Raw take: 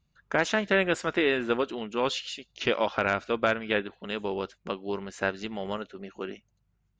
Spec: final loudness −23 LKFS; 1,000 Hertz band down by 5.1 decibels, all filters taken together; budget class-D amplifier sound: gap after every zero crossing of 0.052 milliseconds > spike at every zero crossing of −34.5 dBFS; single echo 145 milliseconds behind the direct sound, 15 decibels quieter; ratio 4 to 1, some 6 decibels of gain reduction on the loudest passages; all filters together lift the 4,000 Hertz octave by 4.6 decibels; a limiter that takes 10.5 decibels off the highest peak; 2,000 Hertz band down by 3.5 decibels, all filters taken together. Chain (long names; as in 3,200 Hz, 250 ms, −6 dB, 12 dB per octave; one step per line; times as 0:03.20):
parametric band 1,000 Hz −6 dB
parametric band 2,000 Hz −5 dB
parametric band 4,000 Hz +8.5 dB
downward compressor 4 to 1, threshold −28 dBFS
brickwall limiter −25.5 dBFS
single-tap delay 145 ms −15 dB
gap after every zero crossing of 0.052 ms
spike at every zero crossing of −34.5 dBFS
level +13.5 dB